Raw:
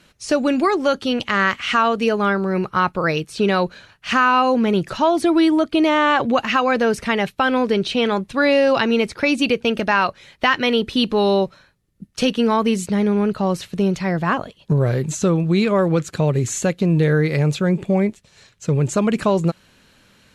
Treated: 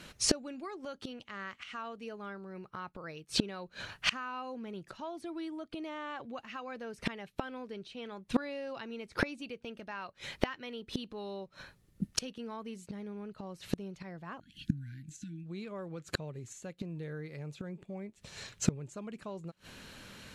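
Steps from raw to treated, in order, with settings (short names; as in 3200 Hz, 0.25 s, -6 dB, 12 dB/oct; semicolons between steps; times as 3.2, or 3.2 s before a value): flipped gate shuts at -17 dBFS, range -28 dB; spectral delete 14.4–15.46, 340–1400 Hz; gain +3 dB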